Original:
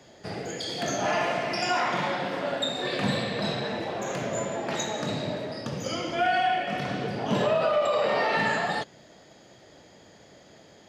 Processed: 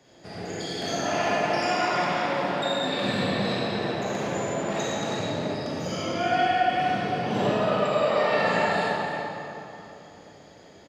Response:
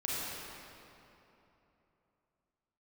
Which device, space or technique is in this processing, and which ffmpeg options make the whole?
cave: -filter_complex "[0:a]aecho=1:1:336:0.237[a];[1:a]atrim=start_sample=2205[b];[a][b]afir=irnorm=-1:irlink=0,volume=-4dB"

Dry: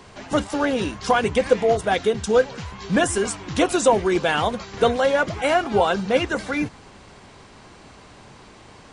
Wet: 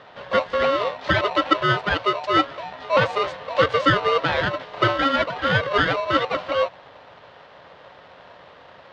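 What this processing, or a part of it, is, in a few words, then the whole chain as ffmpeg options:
ring modulator pedal into a guitar cabinet: -af "aeval=exprs='val(0)*sgn(sin(2*PI*820*n/s))':c=same,highpass=83,equalizer=f=230:t=q:w=4:g=-9,equalizer=f=350:t=q:w=4:g=-5,equalizer=f=540:t=q:w=4:g=8,equalizer=f=2.4k:t=q:w=4:g=-6,lowpass=f=3.6k:w=0.5412,lowpass=f=3.6k:w=1.3066"

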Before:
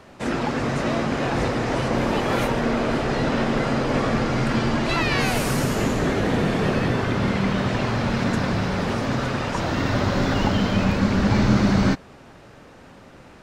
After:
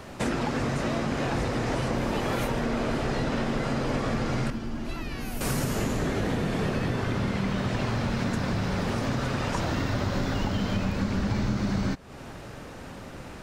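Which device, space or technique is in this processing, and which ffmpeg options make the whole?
ASMR close-microphone chain: -filter_complex "[0:a]lowshelf=f=130:g=5.5,acompressor=threshold=-29dB:ratio=5,highshelf=f=7.6k:g=8,asettb=1/sr,asplit=3[a][b][c];[a]atrim=end=4.504[d];[b]atrim=start=4.5:end=5.41,asetpts=PTS-STARTPTS,afade=t=in:d=0.004:c=qsin,afade=t=out:st=0.906:d=0.004:c=qsin,equalizer=f=125:t=o:w=1:g=-10,equalizer=f=500:t=o:w=1:g=-9,equalizer=f=1k:t=o:w=1:g=-7,equalizer=f=2k:t=o:w=1:g=-8,equalizer=f=4k:t=o:w=1:g=-8,equalizer=f=8k:t=o:w=1:g=-9[e];[c]atrim=start=5.406[f];[d][e]acrossfade=d=0.004:c1=hsin:c2=qsin[g];[g][f]acrossfade=d=0.004:c1=qsin:c2=hsin,volume=3.5dB"

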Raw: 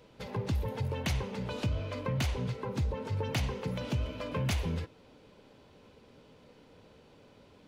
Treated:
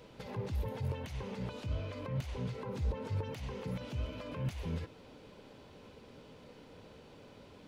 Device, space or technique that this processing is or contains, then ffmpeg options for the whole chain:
de-esser from a sidechain: -filter_complex "[0:a]asplit=2[a][b];[b]highpass=f=4.6k:p=1,apad=whole_len=338574[c];[a][c]sidechaincompress=threshold=-59dB:ratio=5:attack=4.8:release=70,volume=3dB"

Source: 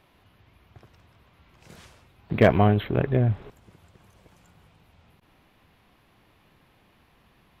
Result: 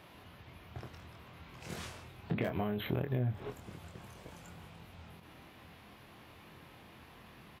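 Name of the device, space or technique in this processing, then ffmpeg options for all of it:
serial compression, peaks first: -filter_complex "[0:a]acompressor=threshold=-30dB:ratio=6,acompressor=threshold=-38dB:ratio=3,asettb=1/sr,asplit=3[a][b][c];[a]atrim=end=2.444[d];[b]atrim=start=2.44:end=3.4,asetpts=PTS-STARTPTS,afade=t=in:d=0.004:c=qsin,afade=t=out:st=0.956:d=0.004:c=qsin,aemphasis=mode=production:type=50fm[e];[c]atrim=start=3.396[f];[d][e]acrossfade=d=0.004:c1=hsin:c2=qsin[g];[g][f]acrossfade=d=0.004:c1=qsin:c2=hsin,highpass=61,asplit=2[h][i];[i]adelay=24,volume=-5dB[j];[h][j]amix=inputs=2:normalize=0,volume=4.5dB"

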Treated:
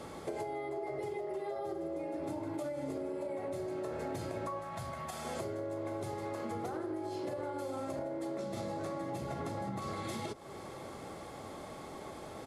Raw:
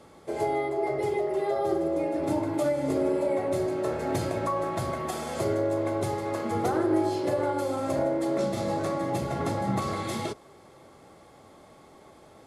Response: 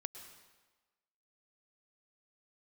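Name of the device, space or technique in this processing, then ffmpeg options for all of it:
serial compression, leveller first: -filter_complex "[0:a]acompressor=threshold=-31dB:ratio=2.5,acompressor=threshold=-44dB:ratio=5,asettb=1/sr,asplit=3[a][b][c];[a]atrim=end=4.594[d];[b]atrim=start=4.59:end=5.25,asetpts=PTS-STARTPTS,afade=t=in:d=0.004:c=qsin,afade=t=out:st=0.656:d=0.004:c=qsin,equalizer=f=360:w=1.8:g=-14.5[e];[c]atrim=start=5.246[f];[d][e]acrossfade=d=0.004:c1=hsin:c2=qsin[g];[g][f]acrossfade=d=0.004:c1=qsin:c2=hsin,aecho=1:1:789:0.0841,volume=6.5dB"

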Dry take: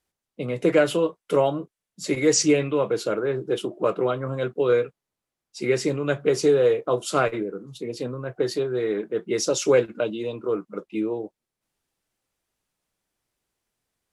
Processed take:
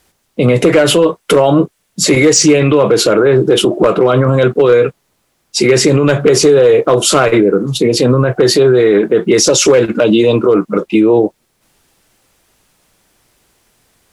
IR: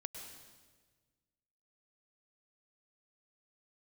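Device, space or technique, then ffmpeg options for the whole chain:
loud club master: -af "acompressor=threshold=-21dB:ratio=3,asoftclip=type=hard:threshold=-17dB,alimiter=level_in=25.5dB:limit=-1dB:release=50:level=0:latency=1,volume=-1dB"

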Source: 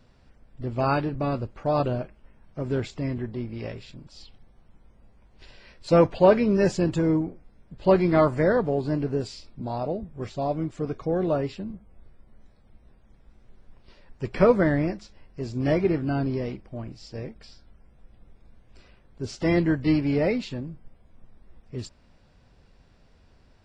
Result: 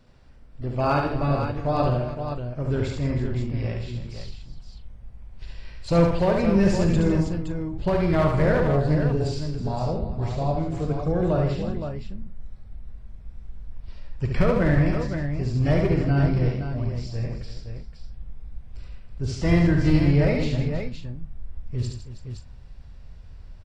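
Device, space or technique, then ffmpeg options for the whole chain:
limiter into clipper: -filter_complex "[0:a]alimiter=limit=-12dB:level=0:latency=1:release=223,asoftclip=type=hard:threshold=-15.5dB,asubboost=boost=5:cutoff=120,asplit=2[a][b];[b]adelay=41,volume=-11dB[c];[a][c]amix=inputs=2:normalize=0,aecho=1:1:71|158|322|518:0.668|0.316|0.224|0.422"

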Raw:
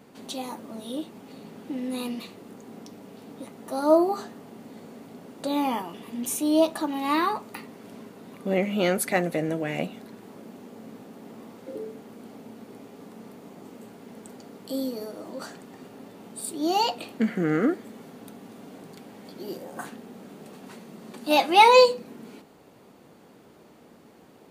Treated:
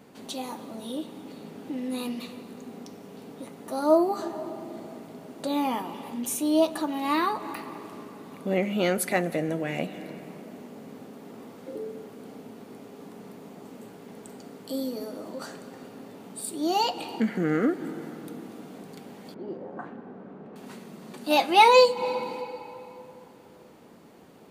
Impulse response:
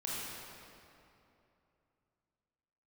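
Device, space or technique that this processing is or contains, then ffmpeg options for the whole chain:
ducked reverb: -filter_complex "[0:a]asplit=3[a][b][c];[1:a]atrim=start_sample=2205[d];[b][d]afir=irnorm=-1:irlink=0[e];[c]apad=whole_len=1080491[f];[e][f]sidechaincompress=threshold=-38dB:ratio=4:attack=16:release=114,volume=-10.5dB[g];[a][g]amix=inputs=2:normalize=0,asettb=1/sr,asplit=3[h][i][j];[h]atrim=end=19.344[k];[i]atrim=start=19.34:end=20.56,asetpts=PTS-STARTPTS,afade=t=in:d=0.004:c=qsin,afade=t=out:st=1.216:d=0.004:c=qsin,lowpass=1.4k[l];[j]atrim=start=20.556[m];[k][l]acrossfade=d=0.004:c1=hsin:c2=qsin[n];[n][m]acrossfade=d=0.004:c1=qsin:c2=hsin,volume=-1.5dB"

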